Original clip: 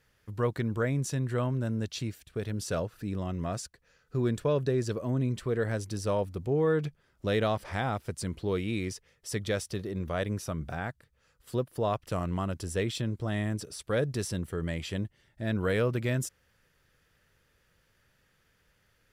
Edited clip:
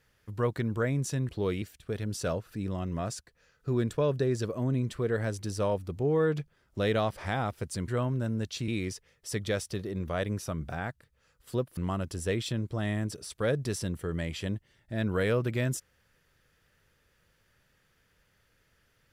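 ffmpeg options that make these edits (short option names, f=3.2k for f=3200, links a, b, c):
-filter_complex "[0:a]asplit=6[a][b][c][d][e][f];[a]atrim=end=1.292[g];[b]atrim=start=8.348:end=8.682[h];[c]atrim=start=2.088:end=8.352[i];[d]atrim=start=1.288:end=2.092[j];[e]atrim=start=8.678:end=11.772[k];[f]atrim=start=12.258[l];[g][h]acrossfade=d=0.004:c1=hsin:c2=hsin[m];[m][i]acrossfade=d=0.004:c1=hsin:c2=hsin[n];[n][j]acrossfade=d=0.004:c1=hsin:c2=hsin[o];[o][k]acrossfade=d=0.004:c1=hsin:c2=hsin[p];[p][l]acrossfade=d=0.004:c1=hsin:c2=hsin"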